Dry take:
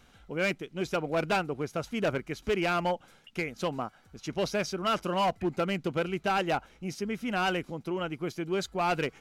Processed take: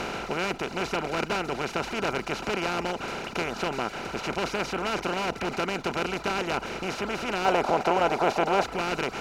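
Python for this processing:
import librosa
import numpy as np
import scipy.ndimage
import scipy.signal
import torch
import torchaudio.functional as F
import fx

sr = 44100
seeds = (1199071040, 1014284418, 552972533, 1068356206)

y = fx.bin_compress(x, sr, power=0.2)
y = fx.dereverb_blind(y, sr, rt60_s=0.58)
y = fx.peak_eq(y, sr, hz=720.0, db=fx.steps((0.0, -3.0), (7.45, 9.0), (8.64, -3.5)), octaves=1.4)
y = y * librosa.db_to_amplitude(-6.0)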